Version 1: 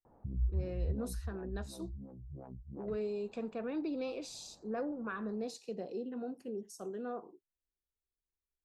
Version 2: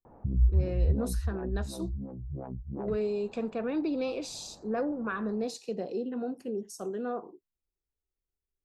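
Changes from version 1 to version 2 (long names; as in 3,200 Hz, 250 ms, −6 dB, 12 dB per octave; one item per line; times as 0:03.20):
speech +6.5 dB
background +9.5 dB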